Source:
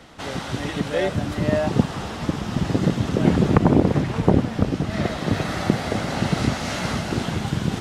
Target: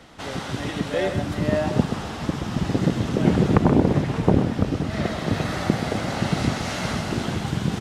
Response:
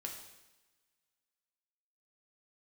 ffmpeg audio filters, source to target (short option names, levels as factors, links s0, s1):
-af "aecho=1:1:128:0.355,volume=0.841"